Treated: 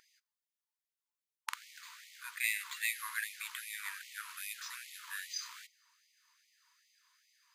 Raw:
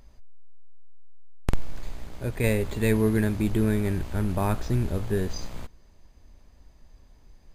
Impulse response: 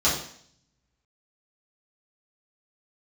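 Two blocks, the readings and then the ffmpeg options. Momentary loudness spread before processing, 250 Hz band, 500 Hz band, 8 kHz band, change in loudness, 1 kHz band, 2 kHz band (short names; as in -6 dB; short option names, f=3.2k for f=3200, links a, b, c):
17 LU, under -40 dB, under -40 dB, 0.0 dB, -12.5 dB, -11.5 dB, -1.0 dB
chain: -filter_complex "[0:a]asplit=2[a][b];[1:a]atrim=start_sample=2205[c];[b][c]afir=irnorm=-1:irlink=0,volume=-34dB[d];[a][d]amix=inputs=2:normalize=0,afftfilt=real='re*gte(b*sr/1024,890*pow(1900/890,0.5+0.5*sin(2*PI*2.5*pts/sr)))':imag='im*gte(b*sr/1024,890*pow(1900/890,0.5+0.5*sin(2*PI*2.5*pts/sr)))':win_size=1024:overlap=0.75"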